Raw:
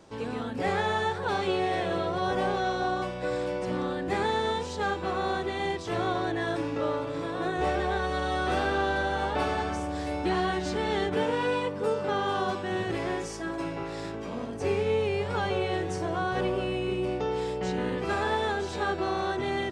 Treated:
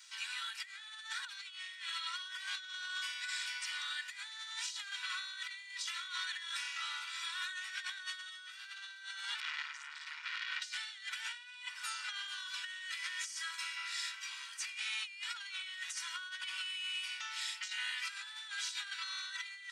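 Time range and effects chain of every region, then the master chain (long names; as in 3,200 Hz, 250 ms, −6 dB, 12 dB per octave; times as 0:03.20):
0:09.40–0:10.62: low-pass filter 6,600 Hz + high-shelf EQ 4,000 Hz −10 dB + saturating transformer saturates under 1,800 Hz
whole clip: Bessel high-pass filter 2,600 Hz, order 8; comb filter 2.1 ms, depth 56%; compressor whose output falls as the input rises −46 dBFS, ratio −0.5; level +4.5 dB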